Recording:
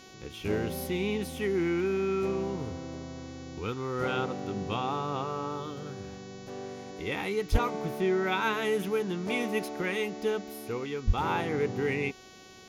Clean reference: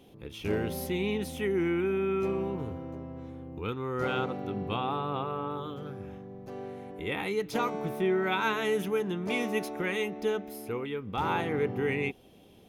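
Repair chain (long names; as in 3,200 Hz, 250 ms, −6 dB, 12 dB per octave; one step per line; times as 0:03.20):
hum removal 374.2 Hz, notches 19
high-pass at the plosives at 0:07.51/0:11.06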